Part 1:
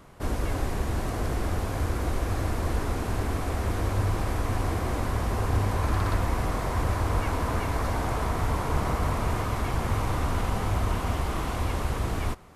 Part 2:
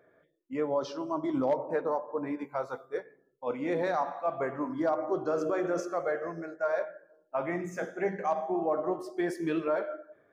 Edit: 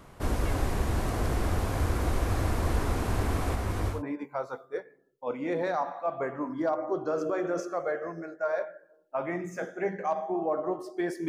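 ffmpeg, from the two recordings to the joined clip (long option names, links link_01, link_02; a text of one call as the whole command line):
ffmpeg -i cue0.wav -i cue1.wav -filter_complex "[0:a]asplit=3[link_01][link_02][link_03];[link_01]afade=type=out:start_time=3.54:duration=0.02[link_04];[link_02]flanger=delay=18.5:depth=6.4:speed=0.53,afade=type=in:start_time=3.54:duration=0.02,afade=type=out:start_time=4.03:duration=0.02[link_05];[link_03]afade=type=in:start_time=4.03:duration=0.02[link_06];[link_04][link_05][link_06]amix=inputs=3:normalize=0,apad=whole_dur=11.28,atrim=end=11.28,atrim=end=4.03,asetpts=PTS-STARTPTS[link_07];[1:a]atrim=start=2.07:end=9.48,asetpts=PTS-STARTPTS[link_08];[link_07][link_08]acrossfade=duration=0.16:curve1=tri:curve2=tri" out.wav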